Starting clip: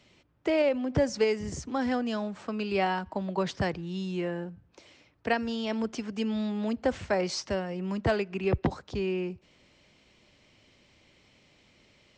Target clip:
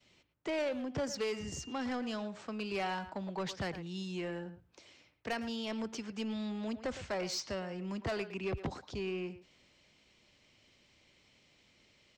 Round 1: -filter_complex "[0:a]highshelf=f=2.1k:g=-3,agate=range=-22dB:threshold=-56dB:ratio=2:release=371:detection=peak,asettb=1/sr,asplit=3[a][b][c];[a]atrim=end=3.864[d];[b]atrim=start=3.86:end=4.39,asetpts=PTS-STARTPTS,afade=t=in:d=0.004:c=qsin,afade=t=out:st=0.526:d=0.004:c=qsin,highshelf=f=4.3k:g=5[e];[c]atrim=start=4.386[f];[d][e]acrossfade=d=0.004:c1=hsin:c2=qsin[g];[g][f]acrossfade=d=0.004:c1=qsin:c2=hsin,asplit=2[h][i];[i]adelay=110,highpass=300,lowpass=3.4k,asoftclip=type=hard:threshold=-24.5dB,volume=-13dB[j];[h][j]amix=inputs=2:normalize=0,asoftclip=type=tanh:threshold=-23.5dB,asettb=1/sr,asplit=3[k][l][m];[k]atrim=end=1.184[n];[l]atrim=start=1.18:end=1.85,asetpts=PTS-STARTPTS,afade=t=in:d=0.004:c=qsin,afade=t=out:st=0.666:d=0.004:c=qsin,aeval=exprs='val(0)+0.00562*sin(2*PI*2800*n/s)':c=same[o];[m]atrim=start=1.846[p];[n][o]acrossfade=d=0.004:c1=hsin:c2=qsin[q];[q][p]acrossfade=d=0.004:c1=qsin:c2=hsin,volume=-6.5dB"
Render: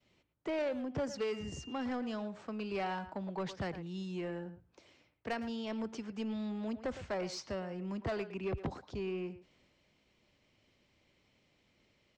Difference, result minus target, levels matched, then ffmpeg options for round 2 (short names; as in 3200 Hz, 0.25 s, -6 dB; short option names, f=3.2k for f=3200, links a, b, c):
4000 Hz band -4.5 dB
-filter_complex "[0:a]highshelf=f=2.1k:g=5.5,agate=range=-22dB:threshold=-56dB:ratio=2:release=371:detection=peak,asettb=1/sr,asplit=3[a][b][c];[a]atrim=end=3.864[d];[b]atrim=start=3.86:end=4.39,asetpts=PTS-STARTPTS,afade=t=in:d=0.004:c=qsin,afade=t=out:st=0.526:d=0.004:c=qsin,highshelf=f=4.3k:g=5[e];[c]atrim=start=4.386[f];[d][e]acrossfade=d=0.004:c1=hsin:c2=qsin[g];[g][f]acrossfade=d=0.004:c1=qsin:c2=hsin,asplit=2[h][i];[i]adelay=110,highpass=300,lowpass=3.4k,asoftclip=type=hard:threshold=-24.5dB,volume=-13dB[j];[h][j]amix=inputs=2:normalize=0,asoftclip=type=tanh:threshold=-23.5dB,asettb=1/sr,asplit=3[k][l][m];[k]atrim=end=1.184[n];[l]atrim=start=1.18:end=1.85,asetpts=PTS-STARTPTS,afade=t=in:d=0.004:c=qsin,afade=t=out:st=0.666:d=0.004:c=qsin,aeval=exprs='val(0)+0.00562*sin(2*PI*2800*n/s)':c=same[o];[m]atrim=start=1.846[p];[n][o]acrossfade=d=0.004:c1=hsin:c2=qsin[q];[q][p]acrossfade=d=0.004:c1=qsin:c2=hsin,volume=-6.5dB"